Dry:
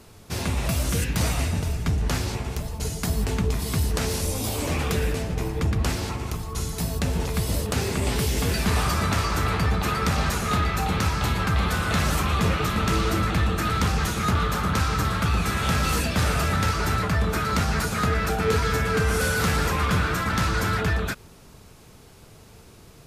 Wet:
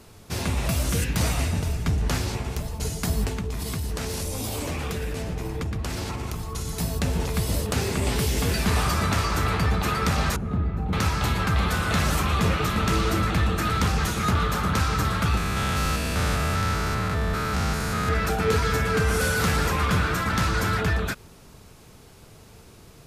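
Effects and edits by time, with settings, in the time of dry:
3.28–6.68 s: compression, threshold -25 dBFS
10.36–10.93 s: FFT filter 230 Hz 0 dB, 2.7 kHz -21 dB, 5.8 kHz -29 dB
15.37–18.09 s: spectrogram pixelated in time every 200 ms

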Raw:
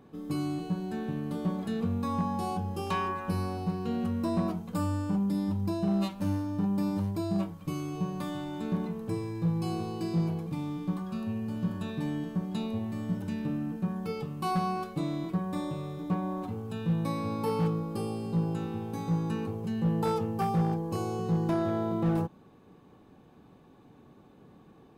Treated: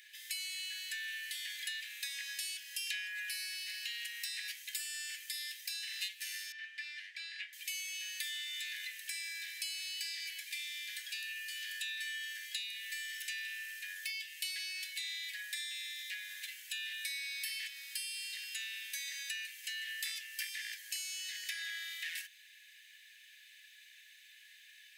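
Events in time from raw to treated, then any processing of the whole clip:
6.52–7.53 s: low-pass 2.3 kHz
14.10–16.29 s: elliptic high-pass 1.6 kHz
whole clip: Chebyshev high-pass 1.7 kHz, order 8; compression 5:1, threshold -55 dBFS; trim +17 dB

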